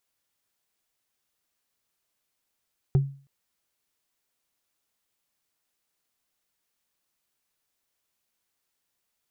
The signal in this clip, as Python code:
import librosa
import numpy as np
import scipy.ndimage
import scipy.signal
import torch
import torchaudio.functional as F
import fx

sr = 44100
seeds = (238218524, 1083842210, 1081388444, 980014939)

y = fx.strike_wood(sr, length_s=0.32, level_db=-14.0, body='bar', hz=138.0, decay_s=0.4, tilt_db=10.5, modes=5)